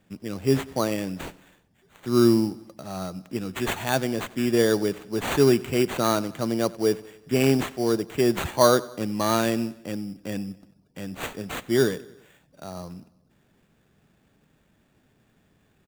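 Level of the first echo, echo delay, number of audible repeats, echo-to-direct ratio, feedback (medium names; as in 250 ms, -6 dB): -21.0 dB, 93 ms, 3, -19.5 dB, 56%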